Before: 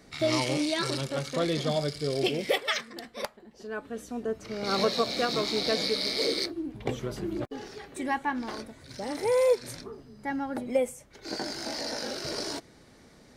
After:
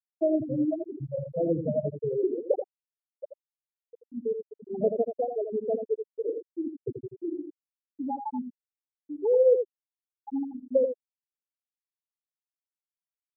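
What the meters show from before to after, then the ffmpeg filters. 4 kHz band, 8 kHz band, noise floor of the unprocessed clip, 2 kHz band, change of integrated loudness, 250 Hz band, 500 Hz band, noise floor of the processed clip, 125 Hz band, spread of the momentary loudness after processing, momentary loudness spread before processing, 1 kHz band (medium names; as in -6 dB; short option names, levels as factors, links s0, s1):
under -40 dB, under -40 dB, -56 dBFS, under -40 dB, +0.5 dB, 0.0 dB, +2.0 dB, under -85 dBFS, -3.0 dB, 15 LU, 13 LU, -7.0 dB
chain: -filter_complex "[0:a]acrossover=split=200|970[s0][s1][s2];[s2]acompressor=threshold=0.00562:ratio=6[s3];[s0][s1][s3]amix=inputs=3:normalize=0,afftfilt=real='re*gte(hypot(re,im),0.224)':imag='im*gte(hypot(re,im),0.224)':win_size=1024:overlap=0.75,adynamicequalizer=threshold=0.00251:dfrequency=930:dqfactor=4.8:tfrequency=930:tqfactor=4.8:attack=5:release=100:ratio=0.375:range=3:mode=cutabove:tftype=bell,aecho=1:1:83:0.422,volume=1.41"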